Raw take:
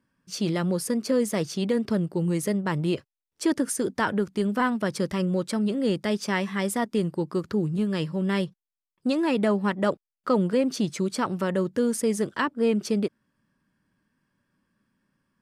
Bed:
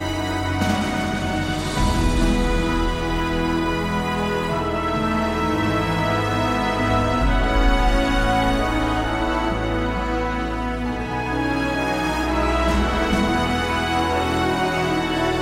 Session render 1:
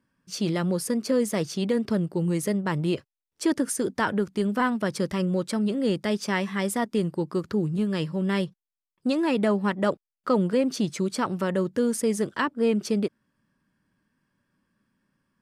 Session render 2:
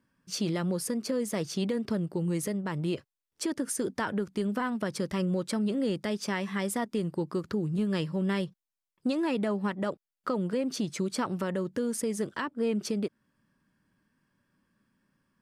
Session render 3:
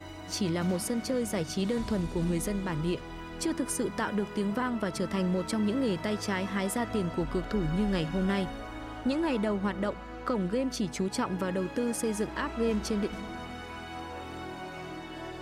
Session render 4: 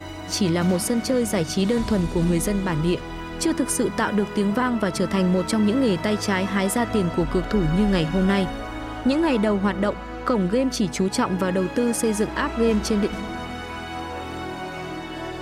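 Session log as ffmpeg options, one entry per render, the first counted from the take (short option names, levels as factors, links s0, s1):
-af anull
-af "acompressor=threshold=0.0501:ratio=2,alimiter=limit=0.0944:level=0:latency=1:release=387"
-filter_complex "[1:a]volume=0.106[s0];[0:a][s0]amix=inputs=2:normalize=0"
-af "volume=2.66"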